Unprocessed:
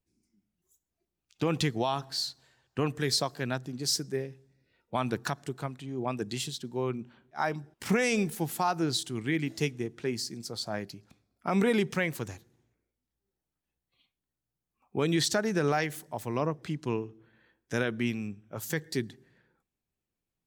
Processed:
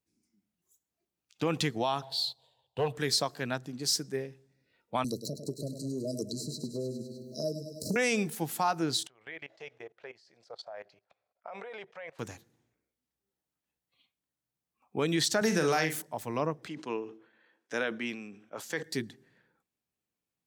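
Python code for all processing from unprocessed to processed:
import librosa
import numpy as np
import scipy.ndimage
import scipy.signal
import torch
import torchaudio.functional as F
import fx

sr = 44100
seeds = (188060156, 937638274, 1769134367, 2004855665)

y = fx.chain(x, sr, fx.curve_eq(hz=(120.0, 200.0, 300.0, 480.0, 940.0, 1400.0, 2200.0, 3500.0, 6000.0, 8800.0), db=(0, -9, -13, 3, 4, -23, -14, 6, -14, -7)),
    fx.leveller(passes=1), at=(2.02, 2.97))
y = fx.chain(y, sr, fx.brickwall_bandstop(low_hz=660.0, high_hz=3900.0),
    fx.echo_feedback(ms=101, feedback_pct=55, wet_db=-11),
    fx.band_squash(depth_pct=100), at=(5.04, 7.96))
y = fx.chain(y, sr, fx.lowpass(hz=3000.0, slope=12),
    fx.low_shelf_res(hz=390.0, db=-14.0, q=3.0),
    fx.level_steps(step_db=21), at=(9.07, 12.19))
y = fx.chain(y, sr, fx.bass_treble(bass_db=0, treble_db=5),
    fx.doubler(ms=44.0, db=-7.0),
    fx.band_squash(depth_pct=100), at=(15.41, 16.02))
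y = fx.chain(y, sr, fx.highpass(hz=300.0, slope=12),
    fx.air_absorb(metres=52.0),
    fx.sustainer(db_per_s=110.0), at=(16.68, 18.83))
y = fx.highpass(y, sr, hz=180.0, slope=6)
y = fx.notch(y, sr, hz=370.0, q=12.0)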